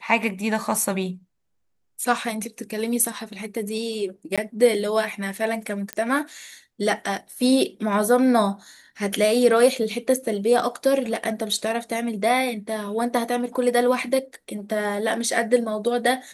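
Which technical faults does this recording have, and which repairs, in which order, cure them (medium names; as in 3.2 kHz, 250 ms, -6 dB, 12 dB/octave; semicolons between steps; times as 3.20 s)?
4.36–4.38 s: dropout 16 ms
5.93 s: pop -12 dBFS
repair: de-click; interpolate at 4.36 s, 16 ms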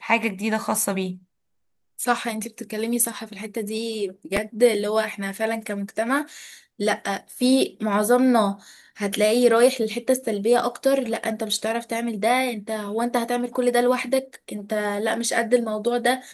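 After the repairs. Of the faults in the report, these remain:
nothing left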